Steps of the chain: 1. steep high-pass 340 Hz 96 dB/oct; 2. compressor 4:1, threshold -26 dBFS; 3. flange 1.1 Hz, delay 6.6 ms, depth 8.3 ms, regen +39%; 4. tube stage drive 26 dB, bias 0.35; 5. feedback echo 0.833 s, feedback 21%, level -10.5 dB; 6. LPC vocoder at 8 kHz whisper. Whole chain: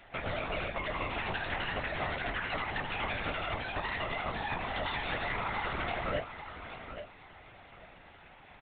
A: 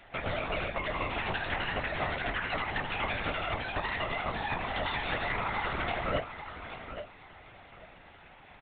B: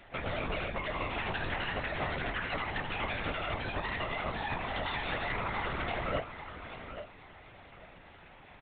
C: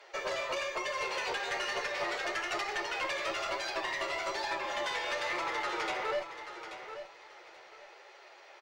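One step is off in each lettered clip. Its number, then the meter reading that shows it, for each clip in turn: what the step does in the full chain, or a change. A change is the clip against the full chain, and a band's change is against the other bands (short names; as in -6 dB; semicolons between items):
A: 4, momentary loudness spread change -2 LU; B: 1, 125 Hz band +2.0 dB; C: 6, 125 Hz band -19.0 dB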